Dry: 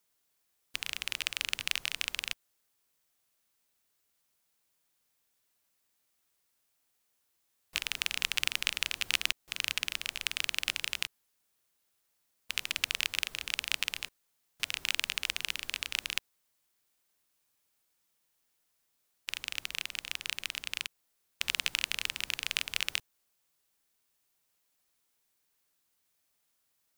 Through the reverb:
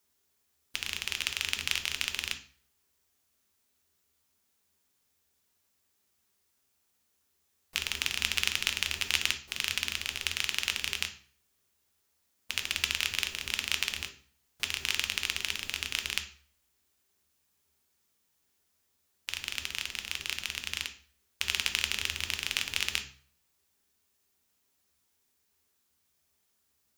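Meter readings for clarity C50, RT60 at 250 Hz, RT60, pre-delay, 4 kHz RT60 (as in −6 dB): 11.5 dB, 0.55 s, 0.45 s, 3 ms, 0.40 s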